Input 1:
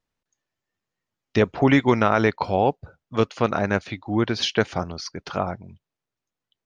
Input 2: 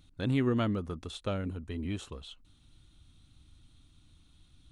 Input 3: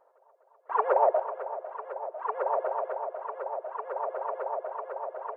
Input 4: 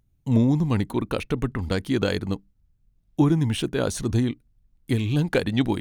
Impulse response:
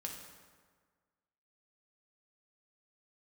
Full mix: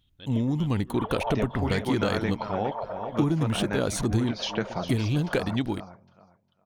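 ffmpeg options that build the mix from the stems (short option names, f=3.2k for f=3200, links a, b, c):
-filter_complex "[0:a]equalizer=f=200:t=o:w=0.24:g=7,flanger=delay=5.4:depth=2.6:regen=-54:speed=1.7:shape=sinusoidal,volume=-2dB,asplit=2[a][b];[b]volume=-12.5dB[c];[1:a]lowpass=f=3.2k:t=q:w=9.1,volume=-15dB,asplit=2[d][e];[e]volume=-6dB[f];[2:a]adelay=250,volume=-5dB,asplit=2[g][h];[h]volume=-17dB[i];[3:a]dynaudnorm=f=280:g=5:m=11.5dB,volume=-3dB[j];[c][f][i]amix=inputs=3:normalize=0,aecho=0:1:405|810|1215:1|0.21|0.0441[k];[a][d][g][j][k]amix=inputs=5:normalize=0,acompressor=threshold=-24dB:ratio=2.5"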